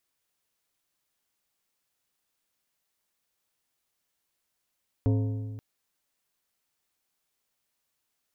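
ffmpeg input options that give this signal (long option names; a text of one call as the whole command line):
ffmpeg -f lavfi -i "aevalsrc='0.1*pow(10,-3*t/1.82)*sin(2*PI*107*t)+0.0501*pow(10,-3*t/1.383)*sin(2*PI*267.5*t)+0.0251*pow(10,-3*t/1.201)*sin(2*PI*428*t)+0.0126*pow(10,-3*t/1.123)*sin(2*PI*535*t)+0.00631*pow(10,-3*t/1.038)*sin(2*PI*695.5*t)+0.00316*pow(10,-3*t/0.958)*sin(2*PI*909.5*t)+0.00158*pow(10,-3*t/0.941)*sin(2*PI*963*t)+0.000794*pow(10,-3*t/0.912)*sin(2*PI*1070*t)':duration=0.53:sample_rate=44100" out.wav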